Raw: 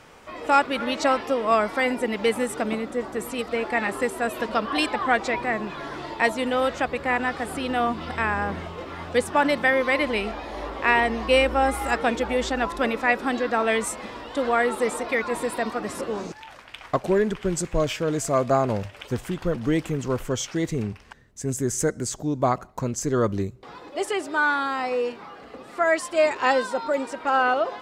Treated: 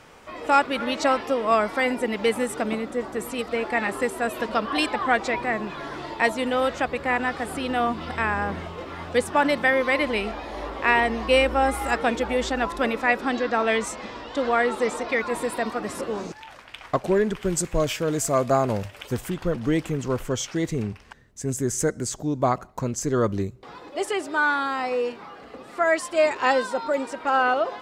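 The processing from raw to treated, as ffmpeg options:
-filter_complex "[0:a]asettb=1/sr,asplit=3[a][b][c];[a]atrim=end=13.214[d];[b]atrim=start=13.21:end=15.19,asetpts=PTS-STARTPTS,afade=t=in:d=0.004:c=qsin,afade=t=out:st=1.976:d=0.004:c=qsin,highshelf=f=7.9k:t=q:w=1.5:g=-7[e];[c]atrim=start=15.186[f];[d][e]acrossfade=d=0.004:c1=hsin:c2=qsin[g];[g][f]acrossfade=d=0.004:c1=qsin:c2=hsin,asettb=1/sr,asplit=3[h][i][j];[h]atrim=end=17.344[k];[i]atrim=start=17.34:end=19.3,asetpts=PTS-STARTPTS,afade=t=in:d=0.004:c=qsin,afade=t=out:st=1.956:d=0.004:c=qsin,highshelf=f=9.8k:g=11[l];[j]atrim=start=19.296[m];[k][l]acrossfade=d=0.004:c1=hsin:c2=qsin[n];[n][m]acrossfade=d=0.004:c1=qsin:c2=hsin"

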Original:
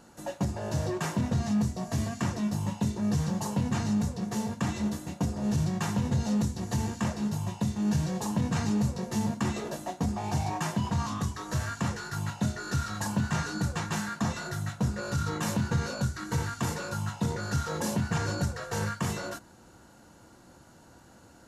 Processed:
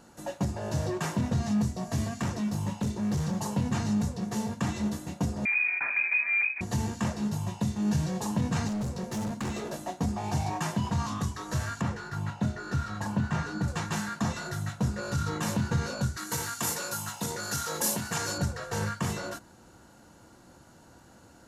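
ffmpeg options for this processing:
-filter_complex "[0:a]asettb=1/sr,asplit=3[a][b][c];[a]atrim=end=2.194[d];[b]atrim=start=2.19:end=3.38,asetpts=PTS-STARTPTS,afade=t=in:d=0.004:c=qsin,afade=t=out:st=1.186:d=0.004:c=qsin,volume=24.5dB,asoftclip=hard,volume=-24.5dB[e];[c]atrim=start=3.376[f];[d][e]acrossfade=d=0.004:c1=hsin:c2=qsin[g];[g][f]acrossfade=d=0.004:c1=qsin:c2=hsin,asettb=1/sr,asplit=3[h][i][j];[h]atrim=end=5.454[k];[i]atrim=start=5.45:end=6.61,asetpts=PTS-STARTPTS,afade=t=in:d=0.004:c=qsin,afade=t=out:st=1.156:d=0.004:c=qsin,lowpass=f=2.2k:t=q:w=0.5098,lowpass=f=2.2k:t=q:w=0.6013,lowpass=f=2.2k:t=q:w=0.9,lowpass=f=2.2k:t=q:w=2.563,afreqshift=-2600[l];[j]atrim=start=6.606[m];[k][l]acrossfade=d=0.004:c1=hsin:c2=qsin[n];[n][m]acrossfade=d=0.004:c1=qsin:c2=hsin,asettb=1/sr,asplit=3[o][p][q];[o]atrim=end=8.684[r];[p]atrim=start=8.68:end=9.78,asetpts=PTS-STARTPTS,afade=t=in:d=0.004:c=qsin,afade=t=out:st=1.096:d=0.004:c=qsin,volume=29dB,asoftclip=hard,volume=-29dB[s];[q]atrim=start=9.776[t];[r][s]acrossfade=d=0.004:c1=hsin:c2=qsin[u];[u][t]acrossfade=d=0.004:c1=qsin:c2=hsin,asettb=1/sr,asplit=3[v][w][x];[v]atrim=end=11.814[y];[w]atrim=start=11.81:end=13.68,asetpts=PTS-STARTPTS,afade=t=in:d=0.004:c=qsin,afade=t=out:st=1.866:d=0.004:c=qsin,highshelf=f=4.1k:g=-12[z];[x]atrim=start=13.676[aa];[y][z]acrossfade=d=0.004:c1=hsin:c2=qsin[ab];[ab][aa]acrossfade=d=0.004:c1=qsin:c2=hsin,asettb=1/sr,asplit=3[ac][ad][ae];[ac]atrim=end=16.174[af];[ad]atrim=start=16.17:end=18.38,asetpts=PTS-STARTPTS,afade=t=in:d=0.004:c=qsin,afade=t=out:st=2.206:d=0.004:c=qsin,aemphasis=mode=production:type=bsi[ag];[ae]atrim=start=18.376[ah];[af][ag]acrossfade=d=0.004:c1=hsin:c2=qsin[ai];[ai][ah]acrossfade=d=0.004:c1=qsin:c2=hsin"

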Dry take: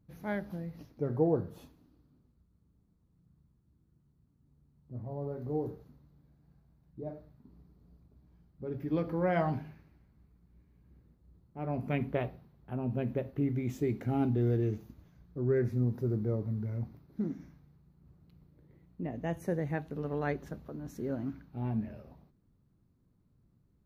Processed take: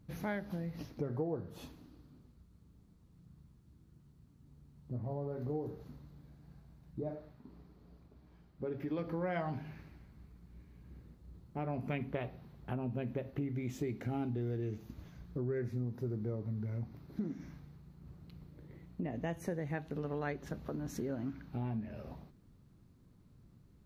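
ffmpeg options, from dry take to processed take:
-filter_complex "[0:a]asettb=1/sr,asplit=3[a][b][c];[a]atrim=end=7.154[d];[b]atrim=start=7.15:end=8.99,asetpts=PTS-STARTPTS,afade=t=in:d=0.004:c=qsin,afade=t=out:st=1.836:d=0.004:c=qsin,bass=f=250:g=-7,treble=f=4k:g=-5[e];[c]atrim=start=8.986[f];[d][e]acrossfade=d=0.004:c1=hsin:c2=qsin[g];[g][f]acrossfade=d=0.004:c1=qsin:c2=hsin,lowpass=f=3.1k:p=1,acompressor=threshold=-44dB:ratio=4,highshelf=f=2.4k:g=11,volume=7dB"

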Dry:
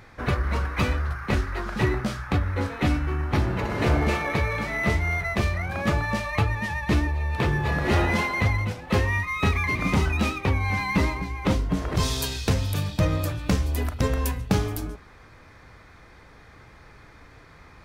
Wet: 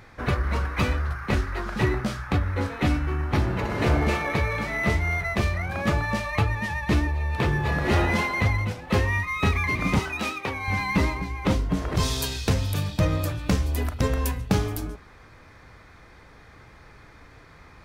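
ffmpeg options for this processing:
-filter_complex "[0:a]asettb=1/sr,asplit=3[a][b][c];[a]atrim=end=9.994[d];[b]atrim=start=9.99:end=10.68,asetpts=PTS-STARTPTS,afade=t=in:d=0.004:c=qsin,afade=t=out:st=0.686:d=0.004:c=qsin,highpass=f=470:p=1[e];[c]atrim=start=10.676[f];[d][e]acrossfade=d=0.004:c1=hsin:c2=qsin[g];[g][f]acrossfade=d=0.004:c1=qsin:c2=hsin"

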